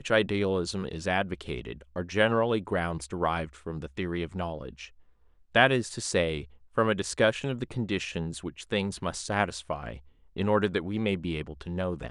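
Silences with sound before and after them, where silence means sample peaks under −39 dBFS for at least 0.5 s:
0:04.86–0:05.55

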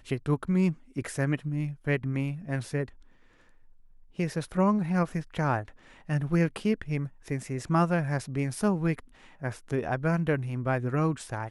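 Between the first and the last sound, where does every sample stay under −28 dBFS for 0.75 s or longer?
0:02.84–0:04.19

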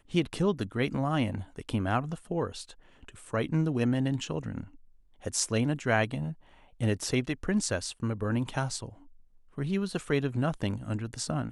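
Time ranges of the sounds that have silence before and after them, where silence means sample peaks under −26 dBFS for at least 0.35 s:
0:03.34–0:04.60
0:05.26–0:06.28
0:06.82–0:08.78

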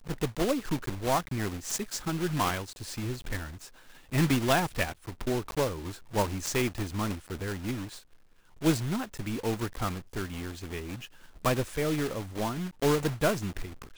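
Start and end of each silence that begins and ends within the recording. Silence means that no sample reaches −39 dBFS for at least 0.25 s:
0:03.68–0:04.12
0:07.98–0:08.62
0:11.06–0:11.45

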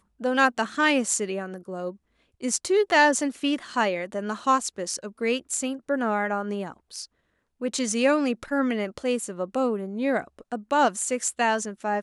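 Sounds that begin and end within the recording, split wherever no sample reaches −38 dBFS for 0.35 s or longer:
0:02.43–0:07.05

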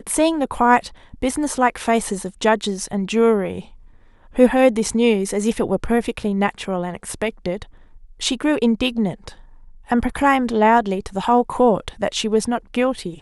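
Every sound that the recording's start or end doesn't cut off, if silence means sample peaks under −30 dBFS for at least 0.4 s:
0:04.36–0:07.63
0:08.21–0:09.29

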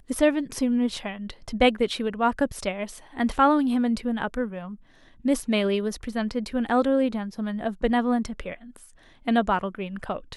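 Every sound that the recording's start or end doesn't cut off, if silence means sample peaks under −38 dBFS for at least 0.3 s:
0:05.25–0:08.84

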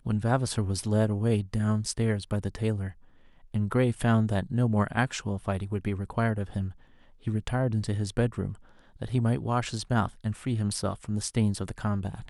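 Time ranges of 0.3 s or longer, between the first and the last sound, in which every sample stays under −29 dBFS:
0:02.88–0:03.54
0:06.68–0:07.27
0:08.49–0:09.02

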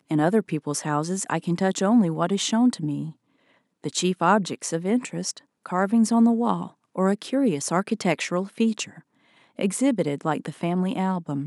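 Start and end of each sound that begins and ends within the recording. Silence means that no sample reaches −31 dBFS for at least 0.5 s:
0:03.84–0:08.84

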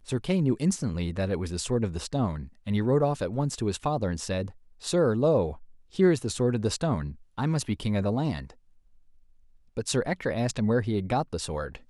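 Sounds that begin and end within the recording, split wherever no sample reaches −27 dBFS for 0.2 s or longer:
0:02.68–0:04.42
0:04.87–0:05.51
0:05.99–0:07.07
0:07.39–0:08.39

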